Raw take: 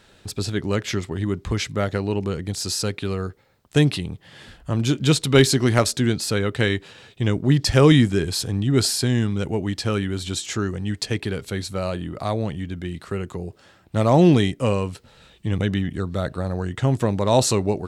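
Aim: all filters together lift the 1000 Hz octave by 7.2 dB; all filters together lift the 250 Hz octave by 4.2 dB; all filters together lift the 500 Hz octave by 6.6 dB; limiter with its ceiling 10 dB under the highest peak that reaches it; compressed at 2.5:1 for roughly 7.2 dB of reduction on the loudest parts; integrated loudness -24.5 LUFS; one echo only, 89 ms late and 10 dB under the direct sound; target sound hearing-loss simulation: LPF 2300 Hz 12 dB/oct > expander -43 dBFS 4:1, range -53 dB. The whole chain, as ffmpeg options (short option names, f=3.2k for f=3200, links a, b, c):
-af "equalizer=f=250:t=o:g=3.5,equalizer=f=500:t=o:g=5.5,equalizer=f=1k:t=o:g=7.5,acompressor=threshold=-15dB:ratio=2.5,alimiter=limit=-12dB:level=0:latency=1,lowpass=2.3k,aecho=1:1:89:0.316,agate=range=-53dB:threshold=-43dB:ratio=4"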